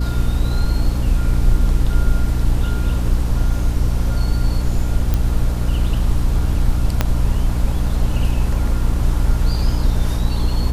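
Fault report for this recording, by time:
hum 60 Hz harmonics 5 -20 dBFS
5.14 pop -7 dBFS
7.01 pop -2 dBFS

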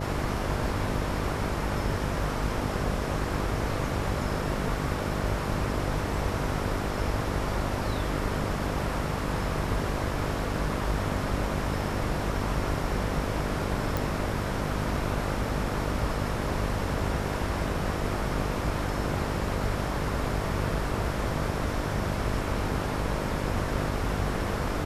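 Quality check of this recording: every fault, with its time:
buzz 50 Hz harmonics 13 -33 dBFS
13.97 pop

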